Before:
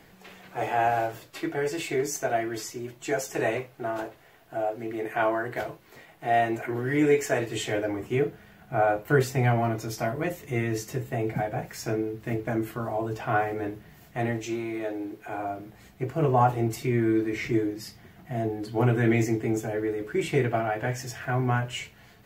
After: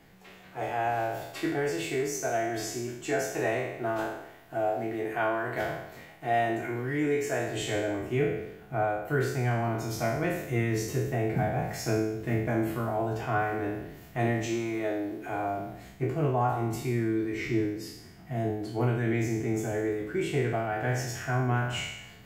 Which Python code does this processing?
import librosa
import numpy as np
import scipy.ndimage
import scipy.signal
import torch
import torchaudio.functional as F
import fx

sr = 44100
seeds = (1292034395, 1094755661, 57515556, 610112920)

y = fx.spec_trails(x, sr, decay_s=0.83)
y = fx.rider(y, sr, range_db=4, speed_s=0.5)
y = fx.bass_treble(y, sr, bass_db=3, treble_db=-1)
y = y * 10.0 ** (-4.5 / 20.0)